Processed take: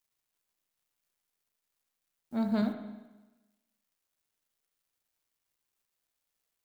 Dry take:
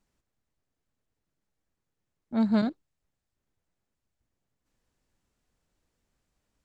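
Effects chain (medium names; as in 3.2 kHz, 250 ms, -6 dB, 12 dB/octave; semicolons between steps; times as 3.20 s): added noise blue -63 dBFS; crossover distortion -58 dBFS; spring tank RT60 1.1 s, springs 34/43 ms, chirp 35 ms, DRR 5.5 dB; trim -5 dB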